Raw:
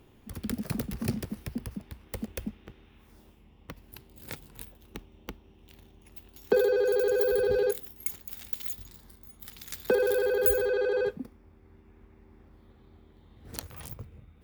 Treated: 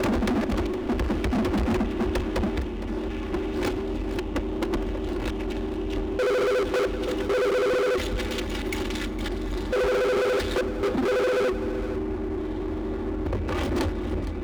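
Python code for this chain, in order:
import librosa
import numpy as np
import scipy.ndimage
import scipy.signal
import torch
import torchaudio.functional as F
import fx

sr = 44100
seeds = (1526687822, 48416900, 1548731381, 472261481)

p1 = fx.block_reorder(x, sr, ms=221.0, group=4)
p2 = scipy.signal.sosfilt(scipy.signal.butter(2, 3100.0, 'lowpass', fs=sr, output='sos'), p1)
p3 = fx.peak_eq(p2, sr, hz=370.0, db=15.0, octaves=0.47)
p4 = p3 + 0.98 * np.pad(p3, (int(3.5 * sr / 1000.0), 0))[:len(p3)]
p5 = fx.over_compress(p4, sr, threshold_db=-28.0, ratio=-0.5)
p6 = p4 + (p5 * 10.0 ** (2.0 / 20.0))
p7 = fx.power_curve(p6, sr, exponent=0.7)
p8 = 10.0 ** (-21.5 / 20.0) * np.tanh(p7 / 10.0 ** (-21.5 / 20.0))
p9 = p8 + 10.0 ** (-13.5 / 20.0) * np.pad(p8, (int(462 * sr / 1000.0), 0))[:len(p8)]
y = fx.running_max(p9, sr, window=3)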